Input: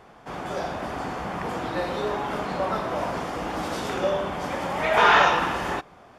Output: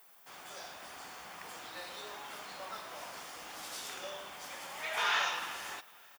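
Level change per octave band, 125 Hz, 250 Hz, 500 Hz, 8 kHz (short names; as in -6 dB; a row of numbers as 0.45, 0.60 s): -28.5, -26.5, -21.5, -2.5 dB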